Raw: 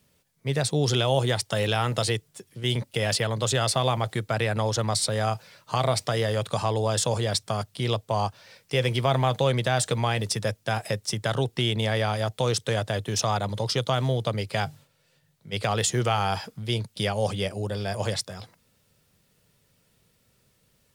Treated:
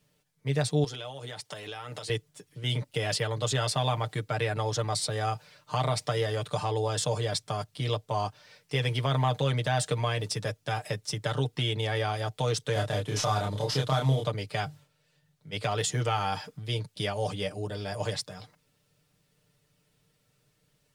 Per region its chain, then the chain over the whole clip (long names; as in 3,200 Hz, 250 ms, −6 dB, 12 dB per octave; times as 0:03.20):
0:00.84–0:02.10: low-shelf EQ 190 Hz −8 dB + downward compressor 10 to 1, threshold −30 dBFS + high-pass filter 100 Hz
0:12.73–0:14.27: variable-slope delta modulation 64 kbit/s + double-tracking delay 29 ms −2 dB
whole clip: high-shelf EQ 11,000 Hz −6.5 dB; comb filter 6.7 ms, depth 73%; level −5.5 dB